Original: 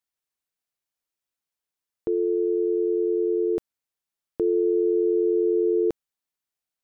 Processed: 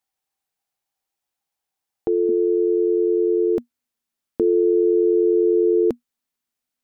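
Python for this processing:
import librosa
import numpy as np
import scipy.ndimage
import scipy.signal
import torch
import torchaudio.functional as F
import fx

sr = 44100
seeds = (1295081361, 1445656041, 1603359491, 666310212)

y = fx.peak_eq(x, sr, hz=fx.steps((0.0, 790.0), (2.29, 240.0)), db=13.0, octaves=0.24)
y = y * librosa.db_to_amplitude(4.0)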